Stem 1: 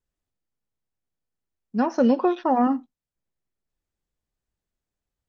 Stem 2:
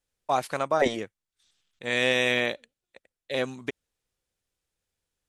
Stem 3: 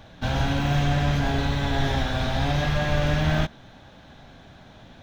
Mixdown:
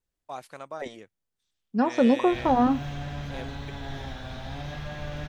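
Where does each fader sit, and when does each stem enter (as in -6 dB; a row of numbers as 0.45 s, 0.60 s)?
-1.0 dB, -13.0 dB, -12.5 dB; 0.00 s, 0.00 s, 2.10 s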